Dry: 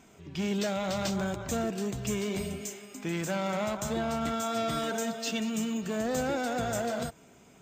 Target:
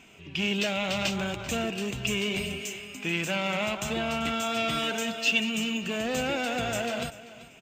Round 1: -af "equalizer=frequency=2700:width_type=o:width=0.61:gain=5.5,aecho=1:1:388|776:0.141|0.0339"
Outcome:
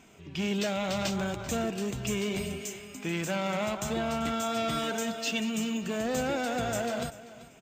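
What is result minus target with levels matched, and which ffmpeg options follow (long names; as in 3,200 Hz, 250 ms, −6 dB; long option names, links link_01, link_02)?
2,000 Hz band −4.0 dB
-af "equalizer=frequency=2700:width_type=o:width=0.61:gain=16,aecho=1:1:388|776:0.141|0.0339"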